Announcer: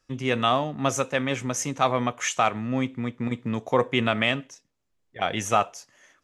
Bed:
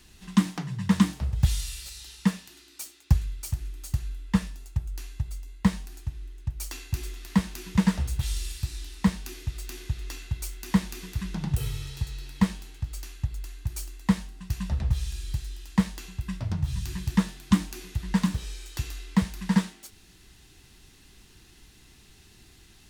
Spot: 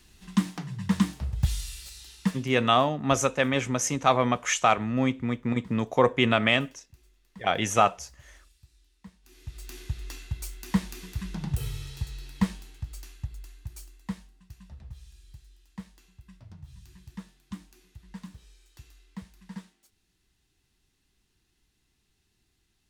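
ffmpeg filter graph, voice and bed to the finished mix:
-filter_complex "[0:a]adelay=2250,volume=1dB[a];[1:a]volume=20.5dB,afade=t=out:st=2.26:d=0.49:silence=0.0707946,afade=t=in:st=9.22:d=0.57:silence=0.0668344,afade=t=out:st=12.38:d=2.18:silence=0.158489[b];[a][b]amix=inputs=2:normalize=0"

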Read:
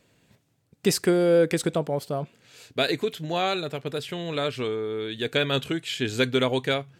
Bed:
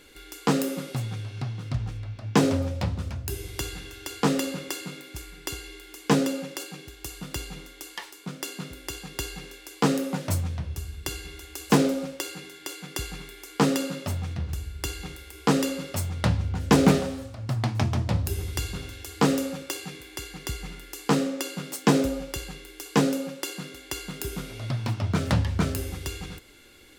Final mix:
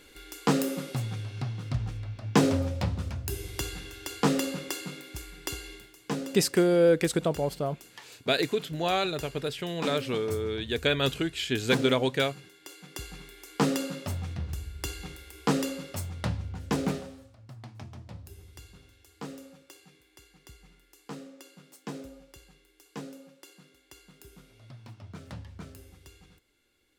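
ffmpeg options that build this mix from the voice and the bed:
-filter_complex "[0:a]adelay=5500,volume=-1.5dB[a];[1:a]volume=6dB,afade=t=out:st=5.72:d=0.22:silence=0.334965,afade=t=in:st=12.61:d=1.05:silence=0.421697,afade=t=out:st=15.34:d=2.18:silence=0.16788[b];[a][b]amix=inputs=2:normalize=0"

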